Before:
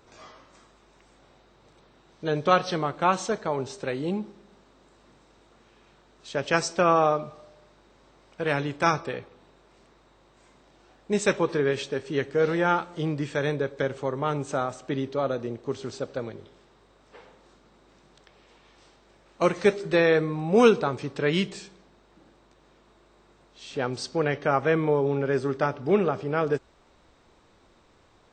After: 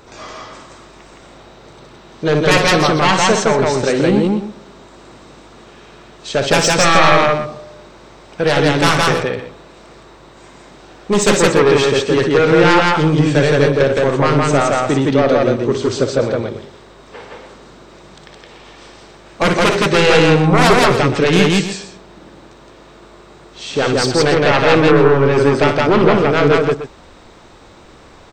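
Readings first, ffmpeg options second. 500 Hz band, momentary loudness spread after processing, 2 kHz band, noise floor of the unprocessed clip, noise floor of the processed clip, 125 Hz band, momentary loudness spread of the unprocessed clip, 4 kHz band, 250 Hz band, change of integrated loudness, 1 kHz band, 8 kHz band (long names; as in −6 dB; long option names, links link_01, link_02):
+11.5 dB, 11 LU, +14.0 dB, −60 dBFS, −42 dBFS, +14.5 dB, 12 LU, +17.5 dB, +13.0 dB, +12.5 dB, +11.5 dB, +17.5 dB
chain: -filter_complex "[0:a]aeval=exprs='0.596*sin(PI/2*5.62*val(0)/0.596)':channel_layout=same,asplit=2[link_01][link_02];[link_02]aecho=0:1:58.31|166.2|288.6:0.398|0.891|0.251[link_03];[link_01][link_03]amix=inputs=2:normalize=0,volume=-4.5dB"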